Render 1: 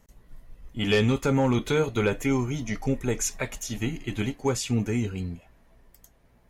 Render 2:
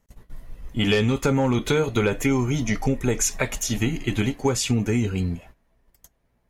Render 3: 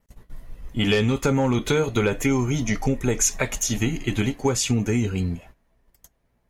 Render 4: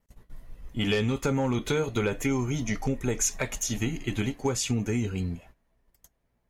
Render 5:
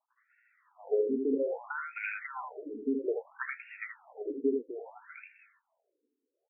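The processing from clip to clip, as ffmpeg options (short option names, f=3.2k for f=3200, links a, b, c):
-af "agate=range=-16dB:threshold=-51dB:ratio=16:detection=peak,acompressor=threshold=-26dB:ratio=4,volume=8dB"
-af "adynamicequalizer=threshold=0.00891:dfrequency=6500:dqfactor=6:tfrequency=6500:tqfactor=6:attack=5:release=100:ratio=0.375:range=2.5:mode=boostabove:tftype=bell"
-af "asoftclip=type=hard:threshold=-10.5dB,volume=-5.5dB"
-af "aecho=1:1:78:0.668,afftfilt=real='re*between(b*sr/1024,330*pow(2000/330,0.5+0.5*sin(2*PI*0.61*pts/sr))/1.41,330*pow(2000/330,0.5+0.5*sin(2*PI*0.61*pts/sr))*1.41)':imag='im*between(b*sr/1024,330*pow(2000/330,0.5+0.5*sin(2*PI*0.61*pts/sr))/1.41,330*pow(2000/330,0.5+0.5*sin(2*PI*0.61*pts/sr))*1.41)':win_size=1024:overlap=0.75"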